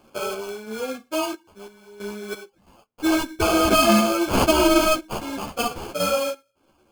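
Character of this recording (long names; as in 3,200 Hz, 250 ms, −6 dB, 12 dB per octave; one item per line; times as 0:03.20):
aliases and images of a low sample rate 1,900 Hz, jitter 0%
sample-and-hold tremolo 3 Hz, depth 85%
a shimmering, thickened sound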